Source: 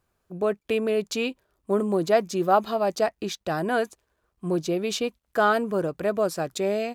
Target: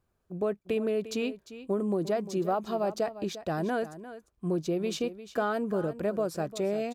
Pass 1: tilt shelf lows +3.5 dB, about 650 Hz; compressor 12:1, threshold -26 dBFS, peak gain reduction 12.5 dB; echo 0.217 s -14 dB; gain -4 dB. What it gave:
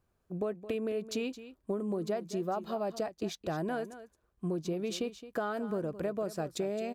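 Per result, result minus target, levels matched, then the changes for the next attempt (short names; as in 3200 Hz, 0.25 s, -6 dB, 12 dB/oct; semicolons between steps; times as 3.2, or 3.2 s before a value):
echo 0.133 s early; compressor: peak gain reduction +5.5 dB
change: echo 0.35 s -14 dB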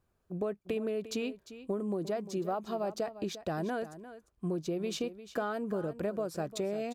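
compressor: peak gain reduction +5.5 dB
change: compressor 12:1, threshold -20 dBFS, peak gain reduction 7 dB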